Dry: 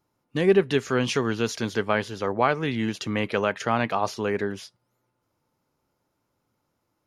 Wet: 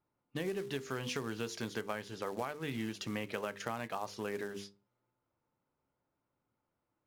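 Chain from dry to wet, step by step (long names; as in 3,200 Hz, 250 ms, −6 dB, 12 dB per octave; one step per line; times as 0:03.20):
mains-hum notches 50/100/150/200/250/300/350/400/450/500 Hz
tuned comb filter 67 Hz, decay 0.19 s, harmonics all, mix 40%
downward compressor 20 to 1, threshold −27 dBFS, peak gain reduction 11 dB
floating-point word with a short mantissa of 2 bits
low-pass that shuts in the quiet parts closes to 2,700 Hz, open at −32 dBFS
level −6 dB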